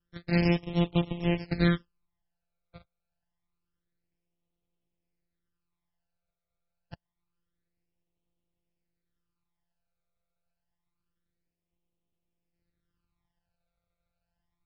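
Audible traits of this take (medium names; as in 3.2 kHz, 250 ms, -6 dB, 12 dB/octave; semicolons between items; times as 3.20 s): a buzz of ramps at a fixed pitch in blocks of 256 samples; phasing stages 12, 0.27 Hz, lowest notch 300–1600 Hz; MP3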